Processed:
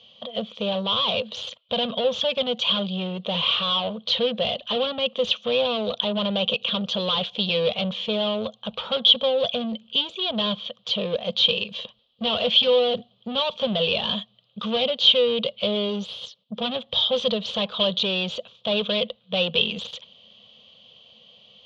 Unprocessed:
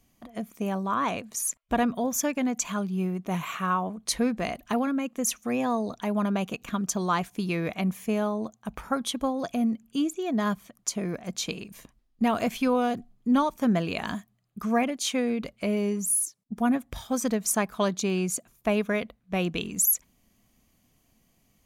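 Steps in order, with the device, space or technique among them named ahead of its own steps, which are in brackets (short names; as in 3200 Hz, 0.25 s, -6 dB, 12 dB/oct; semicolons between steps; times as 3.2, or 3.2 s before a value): overdrive pedal into a guitar cabinet (overdrive pedal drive 27 dB, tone 5300 Hz, clips at -13.5 dBFS; speaker cabinet 110–4000 Hz, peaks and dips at 210 Hz +5 dB, 470 Hz -6 dB, 1700 Hz -6 dB); EQ curve 100 Hz 0 dB, 220 Hz -10 dB, 320 Hz -23 dB, 490 Hz +10 dB, 710 Hz -9 dB, 1100 Hz -9 dB, 2200 Hz -14 dB, 3200 Hz +14 dB, 5100 Hz -3 dB, 12000 Hz -12 dB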